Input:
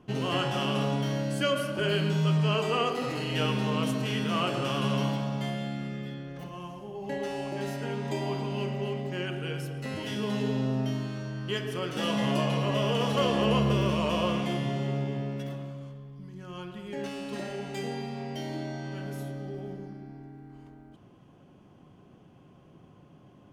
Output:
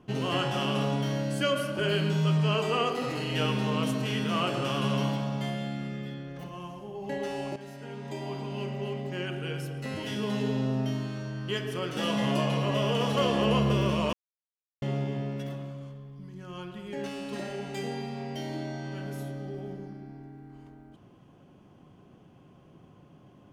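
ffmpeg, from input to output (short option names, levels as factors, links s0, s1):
-filter_complex "[0:a]asplit=4[s0][s1][s2][s3];[s0]atrim=end=7.56,asetpts=PTS-STARTPTS,afade=t=out:st=7.556:d=0.004:c=hsin:silence=0.251189[s4];[s1]atrim=start=7.56:end=14.13,asetpts=PTS-STARTPTS,afade=t=in:d=2.36:c=qsin:silence=0.251189,afade=t=out:st=6.566:d=0.004:c=hsin[s5];[s2]atrim=start=14.13:end=14.82,asetpts=PTS-STARTPTS,volume=0[s6];[s3]atrim=start=14.82,asetpts=PTS-STARTPTS,afade=t=in:d=0.004:c=hsin[s7];[s4][s5][s6][s7]concat=n=4:v=0:a=1"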